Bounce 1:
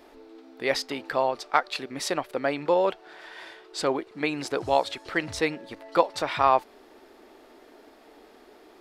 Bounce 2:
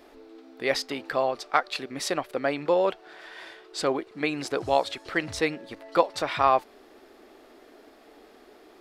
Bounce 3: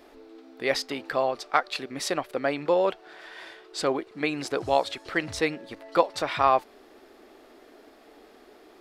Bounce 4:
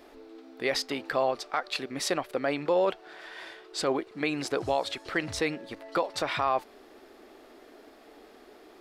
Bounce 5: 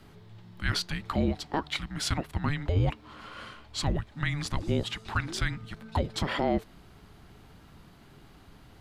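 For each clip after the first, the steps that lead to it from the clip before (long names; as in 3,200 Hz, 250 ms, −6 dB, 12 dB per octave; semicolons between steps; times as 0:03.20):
notch filter 910 Hz, Q 15
no processing that can be heard
brickwall limiter −15.5 dBFS, peak gain reduction 9.5 dB
frequency shifter −440 Hz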